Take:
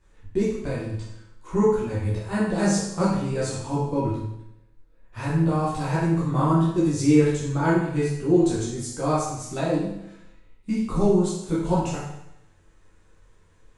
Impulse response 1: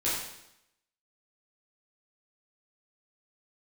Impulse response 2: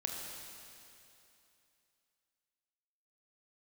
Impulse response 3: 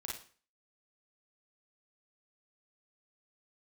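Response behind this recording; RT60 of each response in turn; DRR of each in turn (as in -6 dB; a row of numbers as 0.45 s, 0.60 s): 1; 0.80 s, 2.8 s, 0.45 s; -9.5 dB, 0.0 dB, -3.0 dB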